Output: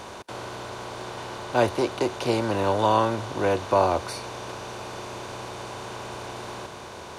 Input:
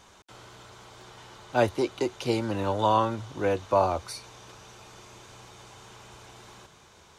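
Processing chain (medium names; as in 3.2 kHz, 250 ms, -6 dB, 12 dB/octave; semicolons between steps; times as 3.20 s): spectral levelling over time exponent 0.6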